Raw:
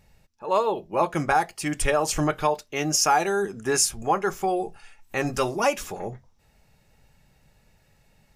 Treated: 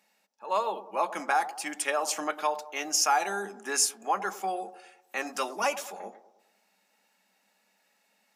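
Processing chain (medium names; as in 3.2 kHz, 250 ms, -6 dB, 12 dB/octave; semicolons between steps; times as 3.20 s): rippled Chebyshev high-pass 190 Hz, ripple 3 dB; peaking EQ 290 Hz -11 dB 2.4 oct; feedback echo behind a band-pass 103 ms, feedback 48%, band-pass 520 Hz, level -13 dB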